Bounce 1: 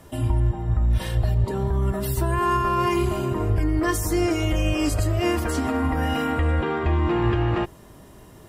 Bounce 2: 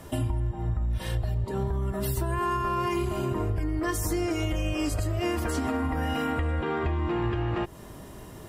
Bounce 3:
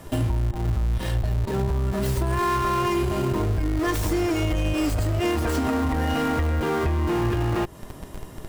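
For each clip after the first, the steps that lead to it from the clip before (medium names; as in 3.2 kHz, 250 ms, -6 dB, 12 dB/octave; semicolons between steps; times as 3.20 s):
compression 6:1, threshold -28 dBFS, peak gain reduction 11.5 dB; trim +3 dB
tracing distortion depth 0.11 ms; in parallel at -7 dB: Schmitt trigger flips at -34 dBFS; on the sum: trim +2 dB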